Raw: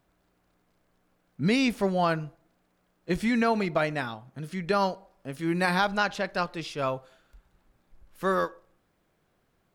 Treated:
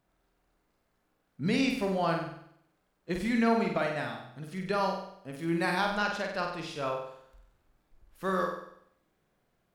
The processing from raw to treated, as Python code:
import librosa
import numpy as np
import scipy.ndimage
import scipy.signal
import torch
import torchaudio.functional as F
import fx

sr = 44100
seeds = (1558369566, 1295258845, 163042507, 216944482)

y = fx.room_flutter(x, sr, wall_m=8.2, rt60_s=0.69)
y = y * 10.0 ** (-5.5 / 20.0)